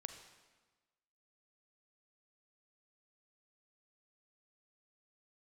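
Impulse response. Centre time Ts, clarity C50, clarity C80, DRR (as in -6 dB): 22 ms, 7.5 dB, 9.5 dB, 7.0 dB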